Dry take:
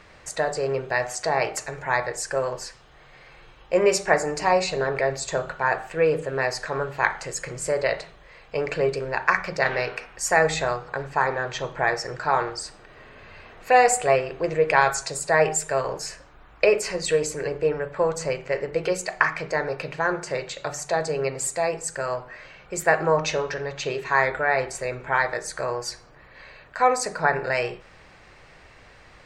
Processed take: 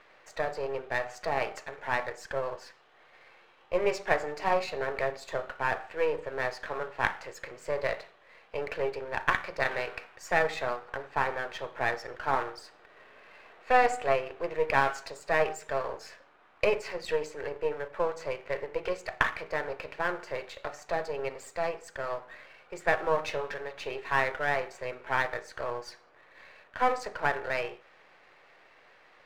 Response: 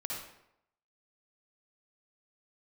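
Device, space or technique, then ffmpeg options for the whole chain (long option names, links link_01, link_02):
crystal radio: -af "highpass=390,lowpass=3400,aeval=exprs='if(lt(val(0),0),0.447*val(0),val(0))':channel_layout=same,volume=-3.5dB"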